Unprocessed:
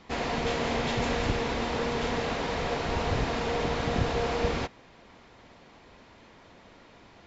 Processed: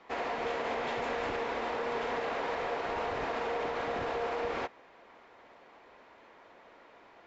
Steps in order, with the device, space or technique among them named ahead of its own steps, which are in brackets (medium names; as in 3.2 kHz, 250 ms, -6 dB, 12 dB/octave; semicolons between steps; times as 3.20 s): DJ mixer with the lows and highs turned down (three-band isolator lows -18 dB, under 340 Hz, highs -12 dB, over 2.5 kHz; peak limiter -25 dBFS, peak gain reduction 5 dB)